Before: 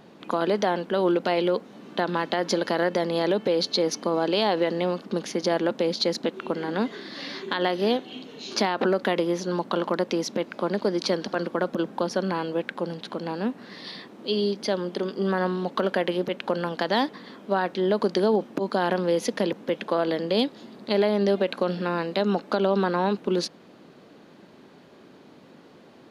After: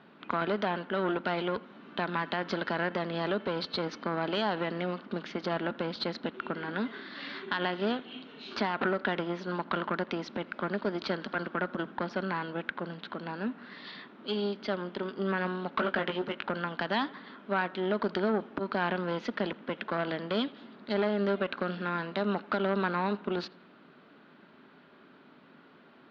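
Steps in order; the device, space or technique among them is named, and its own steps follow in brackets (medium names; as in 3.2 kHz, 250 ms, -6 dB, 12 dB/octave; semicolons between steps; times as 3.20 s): 15.75–16.46 s: doubling 19 ms -6 dB; analogue delay pedal into a guitar amplifier (bucket-brigade echo 83 ms, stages 2048, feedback 53%, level -22.5 dB; valve stage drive 17 dB, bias 0.65; cabinet simulation 110–3700 Hz, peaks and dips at 120 Hz -9 dB, 190 Hz -3 dB, 330 Hz -5 dB, 500 Hz -8 dB, 760 Hz -4 dB, 1.4 kHz +7 dB)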